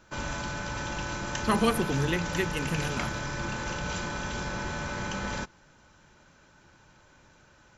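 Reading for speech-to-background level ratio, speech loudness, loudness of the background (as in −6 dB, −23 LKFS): 3.5 dB, −30.0 LKFS, −33.5 LKFS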